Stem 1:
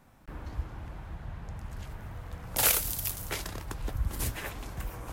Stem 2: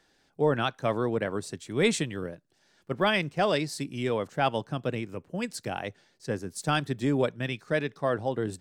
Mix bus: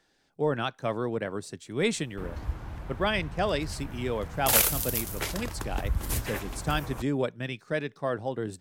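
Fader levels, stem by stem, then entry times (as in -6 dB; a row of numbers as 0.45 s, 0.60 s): +2.5 dB, -2.5 dB; 1.90 s, 0.00 s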